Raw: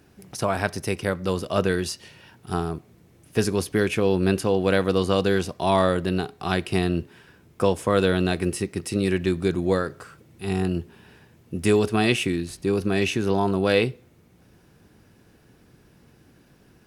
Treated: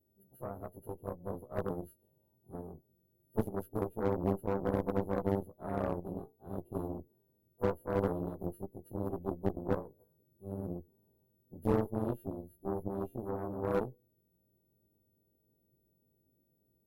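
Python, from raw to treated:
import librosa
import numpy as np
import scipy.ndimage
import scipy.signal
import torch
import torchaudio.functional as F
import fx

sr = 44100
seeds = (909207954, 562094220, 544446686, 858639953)

y = fx.freq_snap(x, sr, grid_st=2)
y = scipy.signal.sosfilt(scipy.signal.cheby2(4, 40, [1200.0, 8900.0], 'bandstop', fs=sr, output='sos'), y)
y = fx.cheby_harmonics(y, sr, harmonics=(2, 3, 4, 5), levels_db=(-24, -9, -20, -27), full_scale_db=-9.5)
y = fx.slew_limit(y, sr, full_power_hz=44.0)
y = y * 10.0 ** (-2.0 / 20.0)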